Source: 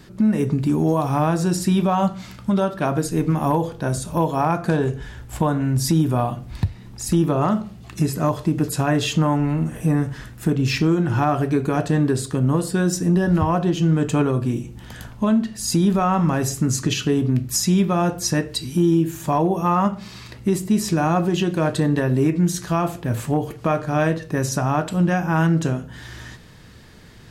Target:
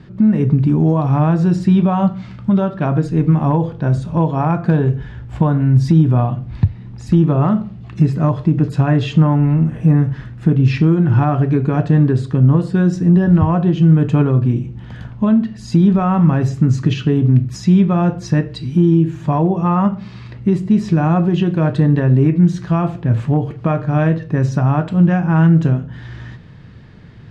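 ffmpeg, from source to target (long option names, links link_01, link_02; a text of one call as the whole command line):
ffmpeg -i in.wav -af "lowpass=3100,equalizer=frequency=130:width=0.83:gain=9.5" out.wav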